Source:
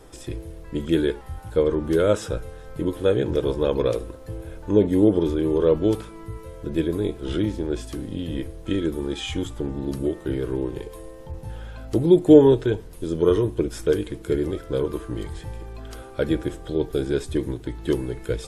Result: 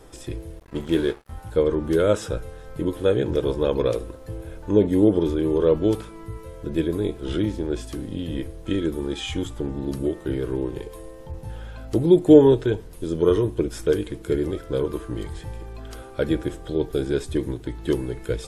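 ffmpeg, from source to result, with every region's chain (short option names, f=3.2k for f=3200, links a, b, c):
-filter_complex "[0:a]asettb=1/sr,asplit=3[a][b][c];[a]atrim=end=0.594[d];[b]atrim=start=0.59:end=1.34,asetpts=PTS-STARTPTS,afade=t=in:d=0.004:c=qsin,afade=t=out:st=0.746:d=0.004:c=qsin,bandreject=f=60:t=h:w=6,bandreject=f=120:t=h:w=6,bandreject=f=180:t=h:w=6,aeval=exprs='sgn(val(0))*max(abs(val(0))-0.0119,0)':c=same,asplit=2[e][f];[f]adelay=22,volume=-12dB[g];[e][g]amix=inputs=2:normalize=0,atrim=end_sample=33075[h];[c]atrim=start=1.336[i];[d][h]acrossfade=d=0.004:c1=hsin:c2=qsin[j];[j][i]acrossfade=d=0.004:c1=qsin:c2=hsin"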